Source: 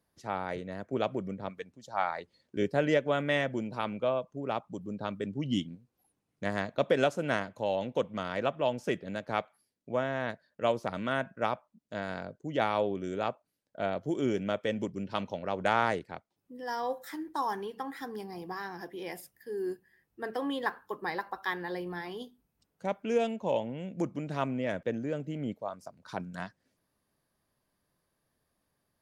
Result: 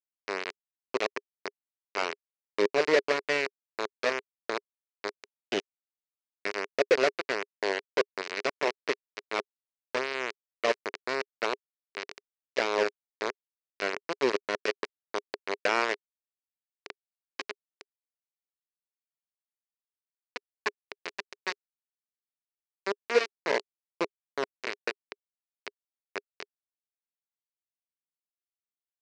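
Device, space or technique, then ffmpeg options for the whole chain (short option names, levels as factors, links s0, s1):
hand-held game console: -af "acrusher=bits=3:mix=0:aa=0.000001,highpass=400,equalizer=f=410:t=q:w=4:g=10,equalizer=f=800:t=q:w=4:g=-7,equalizer=f=1300:t=q:w=4:g=-3,equalizer=f=2200:t=q:w=4:g=3,equalizer=f=3400:t=q:w=4:g=-8,lowpass=f=5100:w=0.5412,lowpass=f=5100:w=1.3066,volume=1.19"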